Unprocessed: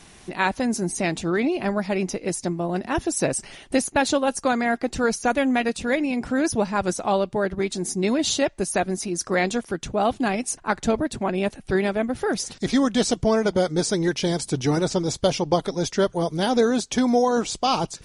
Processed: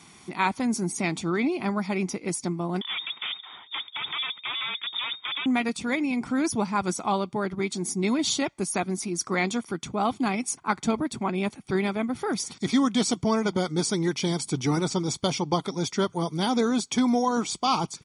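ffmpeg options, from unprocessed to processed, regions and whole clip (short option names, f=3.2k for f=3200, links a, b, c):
-filter_complex "[0:a]asettb=1/sr,asplit=3[a][b][c];[a]atrim=end=2.814[d];[b]atrim=start=2.81:end=5.46,asetpts=PTS-STARTPTS,afade=t=in:d=0.004:c=qsin,afade=t=out:st=2.646:d=0.004:c=qsin,equalizer=f=85:t=o:w=2.2:g=6.5,aeval=exprs='0.0631*(abs(mod(val(0)/0.0631+3,4)-2)-1)':c=same,lowpass=f=3.1k:t=q:w=0.5098,lowpass=f=3.1k:t=q:w=0.6013,lowpass=f=3.1k:t=q:w=0.9,lowpass=f=3.1k:t=q:w=2.563,afreqshift=-3700[e];[c]atrim=start=5.456[f];[d][e]acrossfade=d=0.004:c1=hsin:c2=qsin[g];[g][f]acrossfade=d=0.004:c1=qsin:c2=hsin,highpass=140,aecho=1:1:0.9:0.55,volume=-3dB"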